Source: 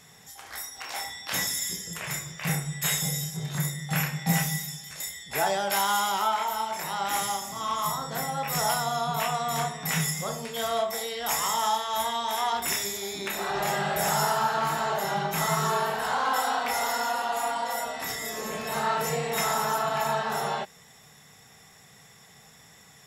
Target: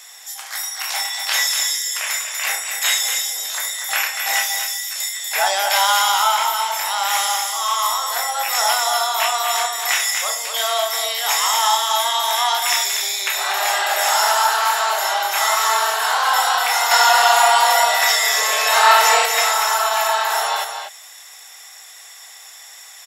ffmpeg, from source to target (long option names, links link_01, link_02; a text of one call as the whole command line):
ffmpeg -i in.wav -filter_complex "[0:a]highshelf=frequency=2200:gain=9,asettb=1/sr,asplit=3[link_01][link_02][link_03];[link_01]atrim=end=16.914[link_04];[link_02]atrim=start=16.91:end=19.26,asetpts=PTS-STARTPTS,afade=type=in:duration=0.004:curve=qsin,afade=type=out:start_time=2.346:duration=0.004:curve=qsin,acontrast=86[link_05];[link_03]atrim=start=19.256[link_06];[link_04][link_05]acrossfade=duration=0.004:curve1=hsin:curve2=qsin[link_07];[link_07][link_06]acrossfade=duration=0.004:curve1=qsin:curve2=hsin,highpass=frequency=630:width=0.5412,highpass=frequency=630:width=1.3066,aecho=1:1:240:0.447,acrossover=split=5800[link_08][link_09];[link_09]acompressor=threshold=-31dB:ratio=4:attack=1:release=60[link_10];[link_08][link_10]amix=inputs=2:normalize=0,volume=6.5dB" out.wav